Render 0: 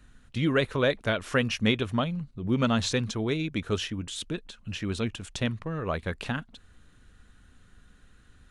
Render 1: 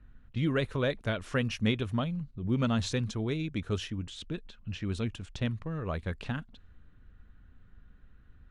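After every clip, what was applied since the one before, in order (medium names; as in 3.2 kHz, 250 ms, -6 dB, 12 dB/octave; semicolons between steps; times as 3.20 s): level-controlled noise filter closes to 2.1 kHz, open at -26 dBFS; bass shelf 180 Hz +8.5 dB; trim -6.5 dB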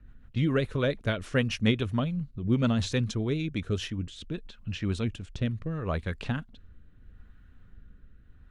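rotary cabinet horn 7 Hz, later 0.75 Hz, at 3.21 s; trim +4.5 dB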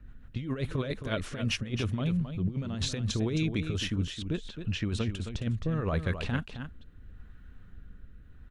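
compressor with a negative ratio -29 dBFS, ratio -0.5; on a send: delay 266 ms -9 dB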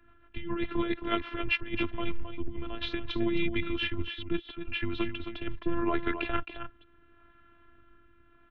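mistuned SSB -100 Hz 150–3400 Hz; robot voice 341 Hz; trim +7 dB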